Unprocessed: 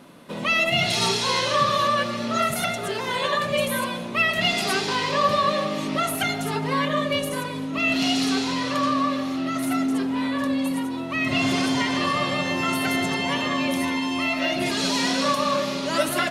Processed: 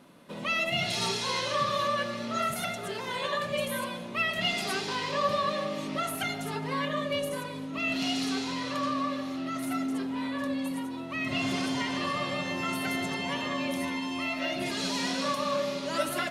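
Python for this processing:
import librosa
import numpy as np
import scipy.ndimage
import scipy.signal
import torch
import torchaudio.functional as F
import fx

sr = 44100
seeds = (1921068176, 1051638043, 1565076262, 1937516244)

y = fx.comb_fb(x, sr, f0_hz=190.0, decay_s=0.68, harmonics='odd', damping=0.0, mix_pct=60)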